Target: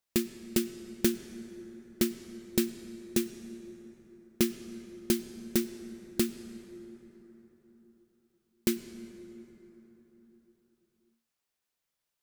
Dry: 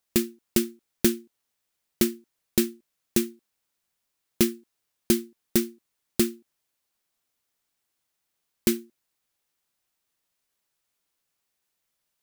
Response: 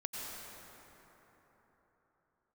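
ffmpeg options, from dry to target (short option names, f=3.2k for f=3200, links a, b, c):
-filter_complex "[0:a]asplit=2[a][b];[1:a]atrim=start_sample=2205,lowpass=8.2k[c];[b][c]afir=irnorm=-1:irlink=0,volume=-9.5dB[d];[a][d]amix=inputs=2:normalize=0,volume=-6.5dB"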